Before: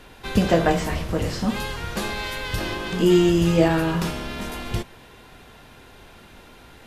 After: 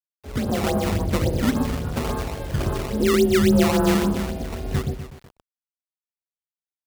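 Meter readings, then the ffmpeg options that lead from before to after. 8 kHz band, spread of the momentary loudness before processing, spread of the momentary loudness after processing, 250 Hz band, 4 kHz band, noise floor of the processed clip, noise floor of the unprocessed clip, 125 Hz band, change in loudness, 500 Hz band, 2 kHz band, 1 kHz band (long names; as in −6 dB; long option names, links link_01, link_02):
+3.0 dB, 13 LU, 12 LU, +0.5 dB, −1.5 dB, below −85 dBFS, −48 dBFS, +0.5 dB, +0.5 dB, +0.5 dB, −2.5 dB, −1.0 dB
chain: -filter_complex "[0:a]alimiter=limit=-13.5dB:level=0:latency=1:release=45,afwtdn=0.0447,afreqshift=32,asplit=2[link_01][link_02];[link_02]adelay=124,lowpass=frequency=1800:poles=1,volume=-3dB,asplit=2[link_03][link_04];[link_04]adelay=124,lowpass=frequency=1800:poles=1,volume=0.39,asplit=2[link_05][link_06];[link_06]adelay=124,lowpass=frequency=1800:poles=1,volume=0.39,asplit=2[link_07][link_08];[link_08]adelay=124,lowpass=frequency=1800:poles=1,volume=0.39,asplit=2[link_09][link_10];[link_10]adelay=124,lowpass=frequency=1800:poles=1,volume=0.39[link_11];[link_01][link_03][link_05][link_07][link_09][link_11]amix=inputs=6:normalize=0,aresample=11025,acrusher=bits=7:mix=0:aa=0.000001,aresample=44100,lowshelf=frequency=64:gain=6.5,acrusher=samples=16:mix=1:aa=0.000001:lfo=1:lforange=25.6:lforate=3.6,dynaudnorm=framelen=270:gausssize=7:maxgain=5dB,volume=-3dB"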